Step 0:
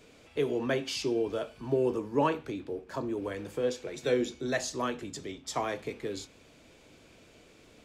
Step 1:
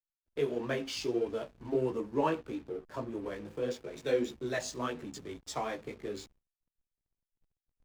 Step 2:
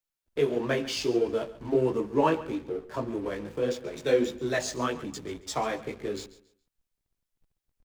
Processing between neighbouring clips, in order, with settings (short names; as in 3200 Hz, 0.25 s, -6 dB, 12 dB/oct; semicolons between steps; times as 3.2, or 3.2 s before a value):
chorus voices 2, 1.5 Hz, delay 16 ms, depth 3 ms; backlash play -45 dBFS; expander -58 dBFS
feedback echo 0.138 s, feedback 27%, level -17 dB; gain +6 dB